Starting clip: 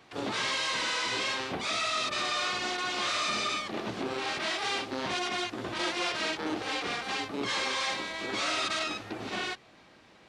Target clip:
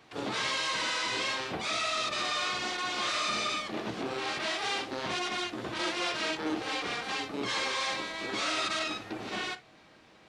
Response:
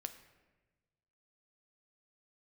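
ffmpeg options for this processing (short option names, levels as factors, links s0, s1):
-filter_complex "[1:a]atrim=start_sample=2205,atrim=end_sample=3087[s0];[0:a][s0]afir=irnorm=-1:irlink=0,volume=1.33"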